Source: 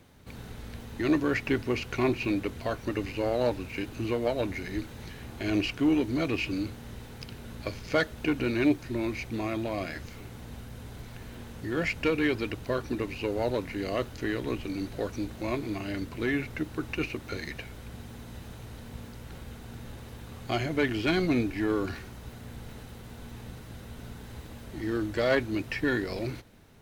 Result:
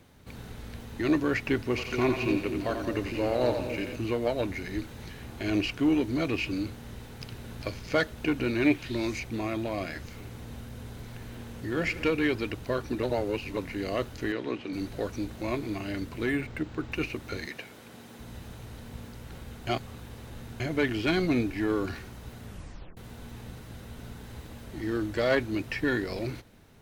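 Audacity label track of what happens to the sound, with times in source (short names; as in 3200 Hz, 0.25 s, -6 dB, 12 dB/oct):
1.630000	3.960000	split-band echo split 490 Hz, lows 0.243 s, highs 88 ms, level -6 dB
6.800000	7.300000	echo throw 0.4 s, feedback 30%, level -6 dB
8.640000	9.180000	bell 1800 Hz -> 7200 Hz +13 dB 0.91 oct
10.010000	12.030000	multi-head echo 77 ms, heads all three, feedback 45%, level -19 dB
13.030000	13.570000	reverse
14.320000	14.730000	BPF 190–4500 Hz
16.290000	16.920000	decimation joined by straight lines rate divided by 4×
17.460000	18.200000	HPF 210 Hz
19.670000	20.600000	reverse
22.450000	22.450000	tape stop 0.52 s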